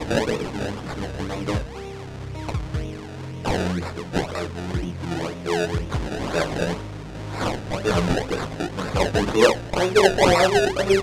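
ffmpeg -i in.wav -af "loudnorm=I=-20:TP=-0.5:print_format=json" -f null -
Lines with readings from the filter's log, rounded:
"input_i" : "-22.1",
"input_tp" : "-3.6",
"input_lra" : "9.2",
"input_thresh" : "-32.5",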